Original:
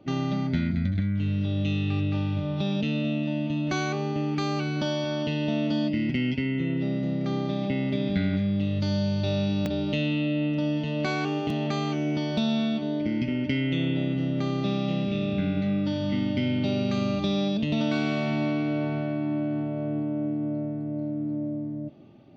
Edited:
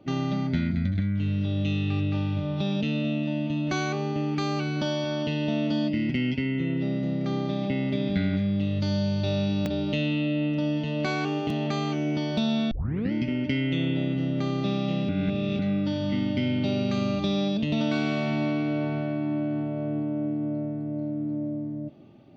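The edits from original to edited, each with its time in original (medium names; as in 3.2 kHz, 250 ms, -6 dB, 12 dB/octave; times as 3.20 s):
12.71 s: tape start 0.41 s
15.09–15.59 s: reverse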